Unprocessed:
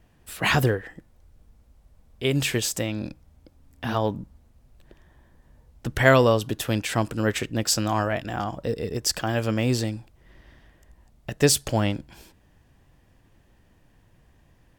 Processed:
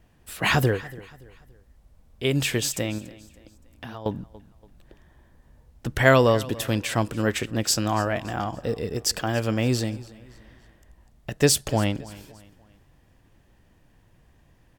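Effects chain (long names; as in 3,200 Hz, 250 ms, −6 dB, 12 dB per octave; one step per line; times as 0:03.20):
0:02.98–0:04.06: downward compressor 4 to 1, threshold −38 dBFS, peak gain reduction 15.5 dB
on a send: repeating echo 285 ms, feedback 40%, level −20 dB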